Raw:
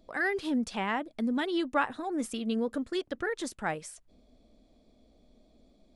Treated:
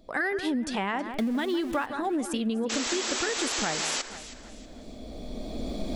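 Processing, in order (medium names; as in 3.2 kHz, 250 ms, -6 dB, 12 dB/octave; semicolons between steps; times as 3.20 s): 1.14–1.86 s: jump at every zero crossing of -39.5 dBFS; recorder AGC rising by 12 dB/s; 2.69–4.02 s: painted sound noise 230–8000 Hz -33 dBFS; on a send: echo whose repeats swap between lows and highs 160 ms, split 2.1 kHz, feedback 59%, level -12 dB; on the sum: compression, threshold -30 dBFS, peak gain reduction 9 dB; trim +5 dB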